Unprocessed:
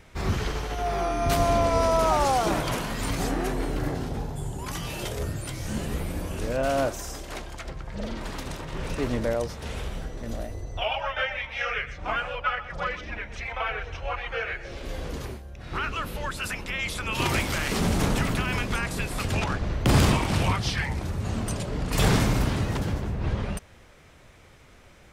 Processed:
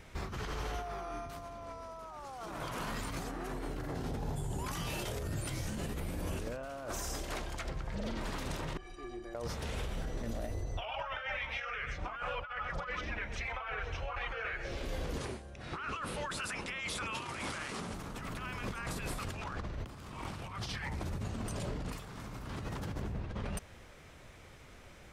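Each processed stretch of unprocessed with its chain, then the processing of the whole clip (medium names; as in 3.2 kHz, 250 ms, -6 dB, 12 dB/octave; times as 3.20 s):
8.77–9.35 s: distance through air 52 m + inharmonic resonator 350 Hz, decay 0.2 s, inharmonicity 0.03
15.18–17.94 s: high-pass 140 Hz 6 dB/octave + careless resampling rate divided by 2×, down none, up filtered
whole clip: dynamic bell 1.2 kHz, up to +6 dB, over -41 dBFS, Q 1.8; compressor with a negative ratio -32 dBFS, ratio -1; peak limiter -22 dBFS; trim -6.5 dB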